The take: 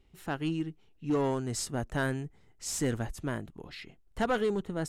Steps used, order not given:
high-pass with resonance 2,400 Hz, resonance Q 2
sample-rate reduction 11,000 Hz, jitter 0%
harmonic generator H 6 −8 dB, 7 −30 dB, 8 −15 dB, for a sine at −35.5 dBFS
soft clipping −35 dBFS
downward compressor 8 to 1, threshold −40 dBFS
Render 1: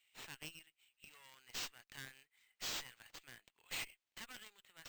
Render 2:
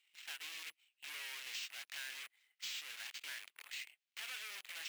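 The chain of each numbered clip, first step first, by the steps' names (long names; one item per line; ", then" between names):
downward compressor, then high-pass with resonance, then soft clipping, then harmonic generator, then sample-rate reduction
harmonic generator, then sample-rate reduction, then high-pass with resonance, then downward compressor, then soft clipping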